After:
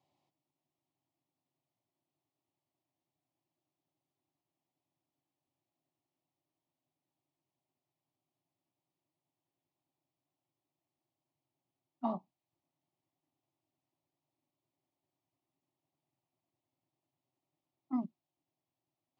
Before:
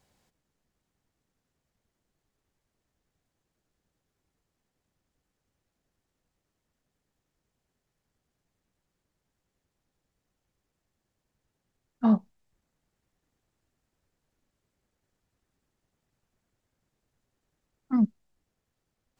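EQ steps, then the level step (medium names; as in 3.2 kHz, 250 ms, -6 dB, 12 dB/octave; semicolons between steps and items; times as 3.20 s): dynamic bell 1.2 kHz, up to +4 dB, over -44 dBFS, Q 1.2; band-pass 160–3100 Hz; static phaser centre 310 Hz, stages 8; -4.0 dB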